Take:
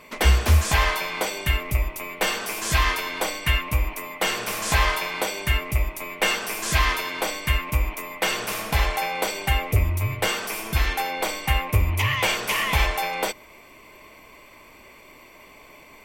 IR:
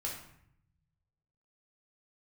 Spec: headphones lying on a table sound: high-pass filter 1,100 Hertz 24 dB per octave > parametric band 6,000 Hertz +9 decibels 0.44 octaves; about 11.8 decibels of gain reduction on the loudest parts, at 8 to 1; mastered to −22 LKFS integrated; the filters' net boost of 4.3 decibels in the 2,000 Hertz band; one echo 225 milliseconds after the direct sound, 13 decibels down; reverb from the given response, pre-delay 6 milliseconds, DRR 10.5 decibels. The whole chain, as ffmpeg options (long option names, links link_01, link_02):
-filter_complex "[0:a]equalizer=frequency=2000:width_type=o:gain=5,acompressor=threshold=-25dB:ratio=8,aecho=1:1:225:0.224,asplit=2[link_01][link_02];[1:a]atrim=start_sample=2205,adelay=6[link_03];[link_02][link_03]afir=irnorm=-1:irlink=0,volume=-12dB[link_04];[link_01][link_04]amix=inputs=2:normalize=0,highpass=frequency=1100:width=0.5412,highpass=frequency=1100:width=1.3066,equalizer=frequency=6000:width_type=o:width=0.44:gain=9,volume=6.5dB"